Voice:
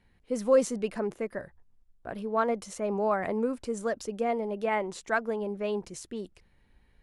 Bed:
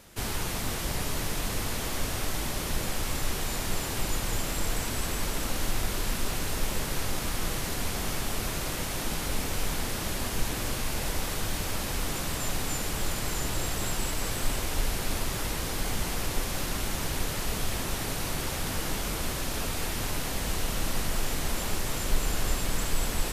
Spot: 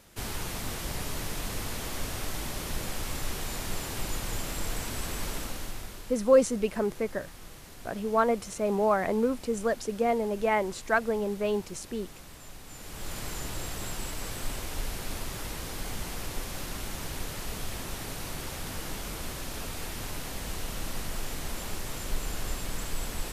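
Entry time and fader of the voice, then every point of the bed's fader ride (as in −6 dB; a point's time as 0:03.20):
5.80 s, +2.5 dB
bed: 0:05.34 −3.5 dB
0:06.20 −16.5 dB
0:12.64 −16.5 dB
0:13.17 −5.5 dB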